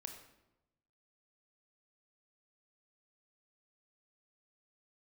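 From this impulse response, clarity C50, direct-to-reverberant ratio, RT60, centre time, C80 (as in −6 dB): 7.0 dB, 4.5 dB, 0.95 s, 23 ms, 9.0 dB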